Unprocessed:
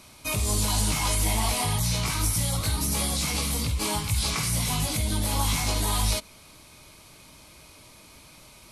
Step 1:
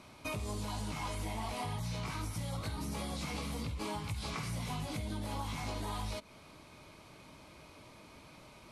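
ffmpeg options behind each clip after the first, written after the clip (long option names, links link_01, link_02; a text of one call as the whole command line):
ffmpeg -i in.wav -af "lowpass=frequency=1600:poles=1,lowshelf=frequency=69:gain=-11,acompressor=threshold=-36dB:ratio=5" out.wav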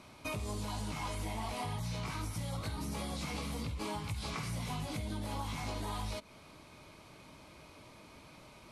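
ffmpeg -i in.wav -af anull out.wav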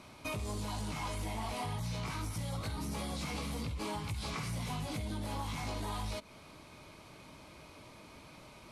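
ffmpeg -i in.wav -af "asoftclip=type=tanh:threshold=-30.5dB,volume=1.5dB" out.wav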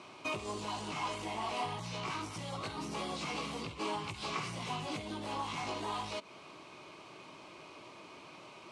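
ffmpeg -i in.wav -af "highpass=170,equalizer=frequency=230:width_type=q:width=4:gain=-4,equalizer=frequency=370:width_type=q:width=4:gain=7,equalizer=frequency=730:width_type=q:width=4:gain=3,equalizer=frequency=1100:width_type=q:width=4:gain=6,equalizer=frequency=2800:width_type=q:width=4:gain=7,lowpass=frequency=8400:width=0.5412,lowpass=frequency=8400:width=1.3066" out.wav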